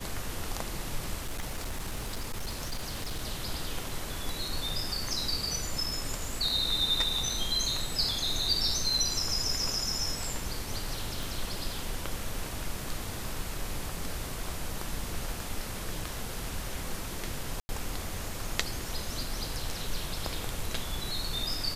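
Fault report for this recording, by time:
1.21–3.24 s: clipped -30 dBFS
11.23 s: pop
17.60–17.69 s: dropout 90 ms

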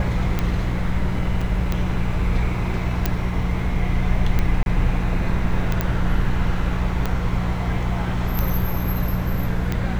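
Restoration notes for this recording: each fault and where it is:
hum 60 Hz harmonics 3 -25 dBFS
tick 45 rpm -9 dBFS
1.41 s: dropout 4.6 ms
3.06 s: pop
4.63–4.66 s: dropout 31 ms
5.81 s: pop -8 dBFS

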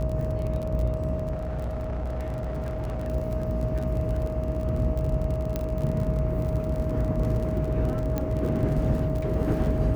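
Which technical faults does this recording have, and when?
buzz 60 Hz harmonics 21 -31 dBFS
crackle 38 per s -31 dBFS
whine 630 Hz -32 dBFS
1.31–3.07 s: clipped -27 dBFS
5.56 s: pop -15 dBFS
8.18 s: pop -15 dBFS

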